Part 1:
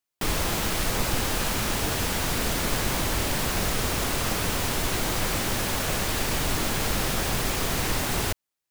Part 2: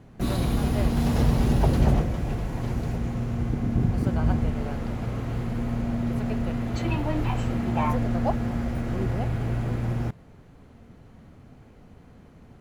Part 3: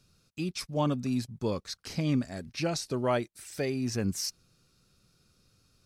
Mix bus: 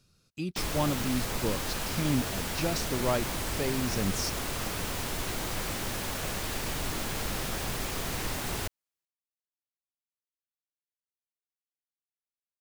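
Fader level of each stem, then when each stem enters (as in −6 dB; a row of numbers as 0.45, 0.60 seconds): −7.0 dB, muted, −1.0 dB; 0.35 s, muted, 0.00 s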